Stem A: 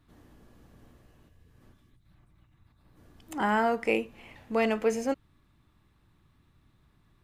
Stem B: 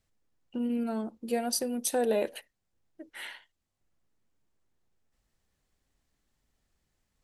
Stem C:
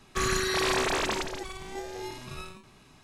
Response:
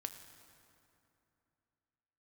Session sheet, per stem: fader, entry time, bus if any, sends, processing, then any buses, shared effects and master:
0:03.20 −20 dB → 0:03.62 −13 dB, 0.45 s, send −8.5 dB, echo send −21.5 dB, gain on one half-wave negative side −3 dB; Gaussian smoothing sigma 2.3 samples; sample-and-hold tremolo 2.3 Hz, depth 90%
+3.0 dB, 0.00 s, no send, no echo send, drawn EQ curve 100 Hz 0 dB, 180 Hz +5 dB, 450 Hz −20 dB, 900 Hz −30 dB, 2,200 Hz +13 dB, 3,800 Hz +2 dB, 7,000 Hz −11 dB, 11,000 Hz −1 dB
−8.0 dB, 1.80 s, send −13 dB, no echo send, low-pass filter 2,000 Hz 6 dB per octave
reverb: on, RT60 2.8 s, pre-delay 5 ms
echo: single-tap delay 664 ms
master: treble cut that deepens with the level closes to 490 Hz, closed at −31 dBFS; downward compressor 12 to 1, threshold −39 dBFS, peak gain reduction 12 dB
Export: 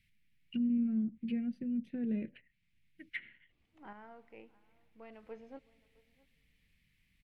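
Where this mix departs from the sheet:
stem A −20.0 dB → −29.0 dB
stem C: muted
master: missing downward compressor 12 to 1, threshold −39 dBFS, peak gain reduction 12 dB

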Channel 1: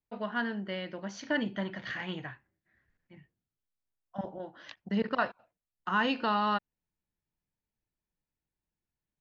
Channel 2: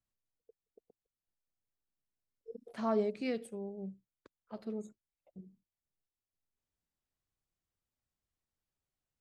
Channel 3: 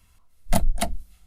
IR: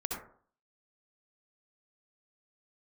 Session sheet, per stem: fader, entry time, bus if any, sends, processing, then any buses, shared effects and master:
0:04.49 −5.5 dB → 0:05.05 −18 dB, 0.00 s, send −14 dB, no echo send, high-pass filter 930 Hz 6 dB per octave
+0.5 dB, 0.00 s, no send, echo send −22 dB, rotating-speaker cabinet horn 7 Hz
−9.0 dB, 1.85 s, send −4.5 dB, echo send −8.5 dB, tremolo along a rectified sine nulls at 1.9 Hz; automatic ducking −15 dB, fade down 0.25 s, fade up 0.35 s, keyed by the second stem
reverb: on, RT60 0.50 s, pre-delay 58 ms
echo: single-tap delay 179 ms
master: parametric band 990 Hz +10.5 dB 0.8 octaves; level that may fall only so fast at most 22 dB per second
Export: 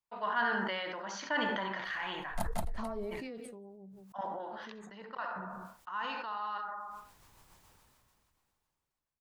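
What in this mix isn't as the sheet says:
stem 2 +0.5 dB → −10.5 dB
stem 3: send off
reverb return +8.0 dB

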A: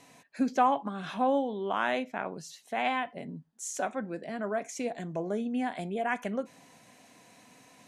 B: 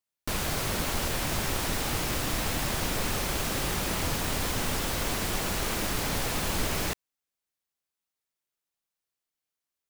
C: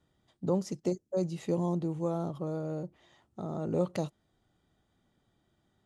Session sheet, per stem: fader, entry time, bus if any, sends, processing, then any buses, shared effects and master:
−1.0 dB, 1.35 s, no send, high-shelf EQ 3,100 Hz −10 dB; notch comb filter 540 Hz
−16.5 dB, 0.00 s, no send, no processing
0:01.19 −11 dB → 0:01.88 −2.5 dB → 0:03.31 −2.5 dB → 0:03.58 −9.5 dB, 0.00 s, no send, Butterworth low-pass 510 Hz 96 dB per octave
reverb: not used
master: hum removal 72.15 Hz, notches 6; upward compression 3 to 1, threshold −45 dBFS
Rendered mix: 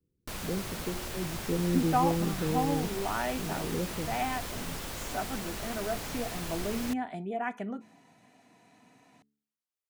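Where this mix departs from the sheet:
stem B −16.5 dB → −8.5 dB
stem C −11.0 dB → −4.0 dB
master: missing upward compression 3 to 1, threshold −45 dBFS

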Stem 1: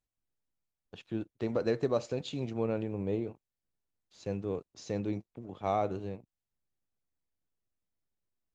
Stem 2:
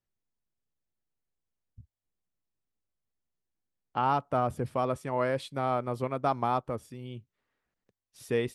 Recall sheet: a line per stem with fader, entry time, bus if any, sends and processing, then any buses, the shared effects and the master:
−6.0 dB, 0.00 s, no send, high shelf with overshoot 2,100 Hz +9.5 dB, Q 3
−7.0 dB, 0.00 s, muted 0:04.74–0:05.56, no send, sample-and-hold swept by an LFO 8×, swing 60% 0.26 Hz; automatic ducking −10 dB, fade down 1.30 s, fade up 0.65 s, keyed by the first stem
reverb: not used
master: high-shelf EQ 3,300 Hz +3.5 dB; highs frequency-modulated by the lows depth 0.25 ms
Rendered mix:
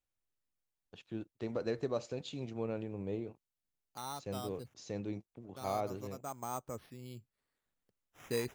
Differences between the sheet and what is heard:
stem 1: missing high shelf with overshoot 2,100 Hz +9.5 dB, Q 3
master: missing highs frequency-modulated by the lows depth 0.25 ms

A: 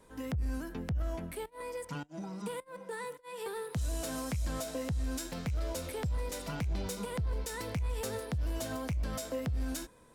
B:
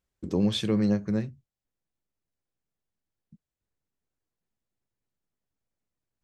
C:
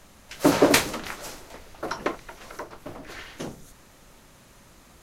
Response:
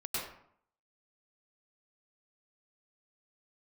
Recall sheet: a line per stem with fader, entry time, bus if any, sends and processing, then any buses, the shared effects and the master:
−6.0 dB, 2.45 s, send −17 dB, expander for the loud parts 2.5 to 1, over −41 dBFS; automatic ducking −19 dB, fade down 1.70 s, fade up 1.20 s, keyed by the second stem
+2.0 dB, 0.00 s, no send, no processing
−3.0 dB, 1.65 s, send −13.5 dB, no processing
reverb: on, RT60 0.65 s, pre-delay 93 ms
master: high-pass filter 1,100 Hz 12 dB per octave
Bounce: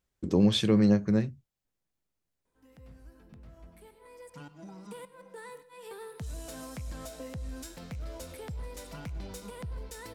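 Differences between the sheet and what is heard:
stem A: missing expander for the loud parts 2.5 to 1, over −41 dBFS
stem C: muted
master: missing high-pass filter 1,100 Hz 12 dB per octave

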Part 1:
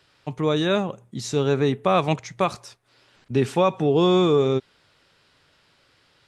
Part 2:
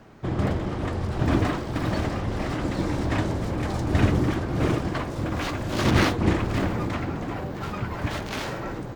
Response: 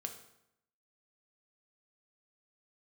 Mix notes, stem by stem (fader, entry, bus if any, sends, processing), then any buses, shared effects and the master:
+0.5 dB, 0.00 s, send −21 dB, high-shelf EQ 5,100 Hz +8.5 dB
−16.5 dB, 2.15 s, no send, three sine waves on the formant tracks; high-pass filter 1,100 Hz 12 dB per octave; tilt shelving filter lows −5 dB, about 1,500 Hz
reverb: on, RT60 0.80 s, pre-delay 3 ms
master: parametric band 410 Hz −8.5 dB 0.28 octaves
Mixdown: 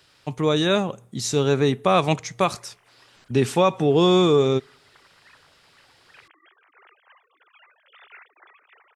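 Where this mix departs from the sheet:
stem 2 −16.5 dB → −24.0 dB
master: missing parametric band 410 Hz −8.5 dB 0.28 octaves

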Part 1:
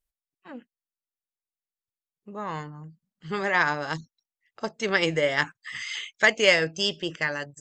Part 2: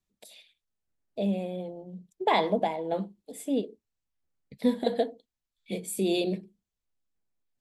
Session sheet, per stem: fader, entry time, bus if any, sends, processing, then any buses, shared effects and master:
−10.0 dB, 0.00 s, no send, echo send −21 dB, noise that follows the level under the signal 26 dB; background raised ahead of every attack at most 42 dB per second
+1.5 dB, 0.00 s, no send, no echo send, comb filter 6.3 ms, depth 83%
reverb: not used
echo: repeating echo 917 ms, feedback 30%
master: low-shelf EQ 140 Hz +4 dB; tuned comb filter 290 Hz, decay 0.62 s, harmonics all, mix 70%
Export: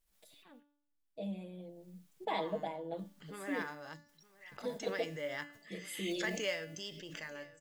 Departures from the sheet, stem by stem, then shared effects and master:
stem 2 +1.5 dB → −4.5 dB
master: missing low-shelf EQ 140 Hz +4 dB

